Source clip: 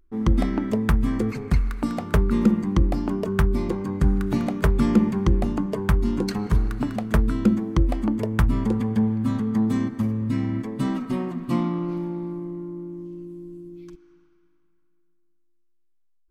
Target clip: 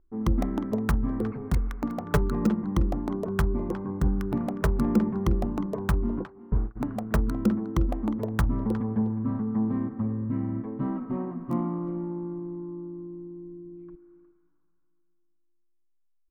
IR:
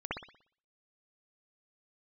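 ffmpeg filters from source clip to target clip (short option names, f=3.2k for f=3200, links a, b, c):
-filter_complex "[0:a]asplit=3[a][b][c];[a]afade=t=out:st=2.05:d=0.02[d];[b]aecho=1:1:6.9:0.78,afade=t=in:st=2.05:d=0.02,afade=t=out:st=2.46:d=0.02[e];[c]afade=t=in:st=2.46:d=0.02[f];[d][e][f]amix=inputs=3:normalize=0,asplit=3[g][h][i];[g]afade=t=out:st=6.19:d=0.02[j];[h]agate=range=-27dB:threshold=-21dB:ratio=16:detection=peak,afade=t=in:st=6.19:d=0.02,afade=t=out:st=6.75:d=0.02[k];[i]afade=t=in:st=6.75:d=0.02[l];[j][k][l]amix=inputs=3:normalize=0,acrossover=split=1200[m][n];[m]crystalizer=i=8.5:c=0[o];[n]acrusher=bits=4:mix=0:aa=0.000001[p];[o][p]amix=inputs=2:normalize=0,asplit=2[q][r];[r]adelay=360,highpass=300,lowpass=3.4k,asoftclip=type=hard:threshold=-13dB,volume=-13dB[s];[q][s]amix=inputs=2:normalize=0,volume=-5dB"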